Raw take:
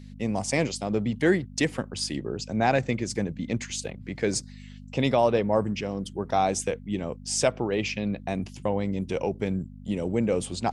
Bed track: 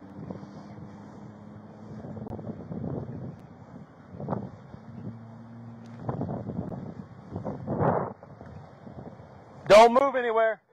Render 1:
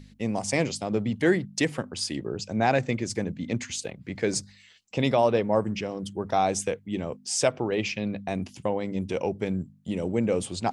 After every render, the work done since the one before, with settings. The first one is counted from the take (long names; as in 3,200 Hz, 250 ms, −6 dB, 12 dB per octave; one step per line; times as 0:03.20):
hum removal 50 Hz, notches 5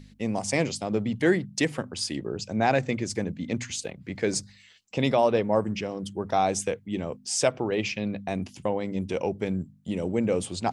mains-hum notches 60/120 Hz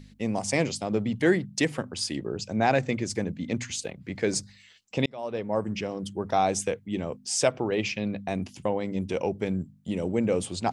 0:05.06–0:05.83: fade in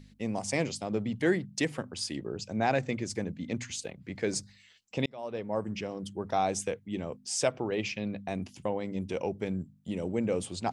level −4.5 dB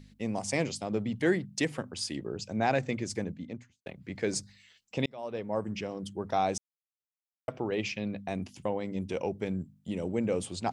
0:03.17–0:03.86: fade out and dull
0:06.58–0:07.48: silence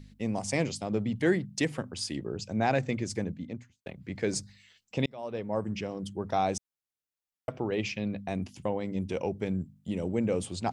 low-shelf EQ 170 Hz +5 dB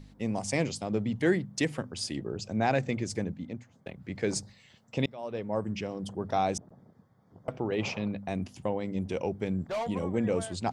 mix in bed track −18.5 dB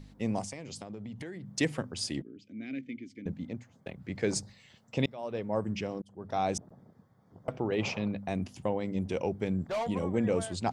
0:00.44–0:01.50: downward compressor 20 to 1, threshold −37 dBFS
0:02.22–0:03.26: formant filter i
0:06.02–0:06.55: fade in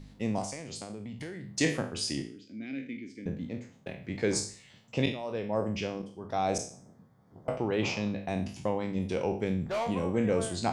peak hold with a decay on every bin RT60 0.44 s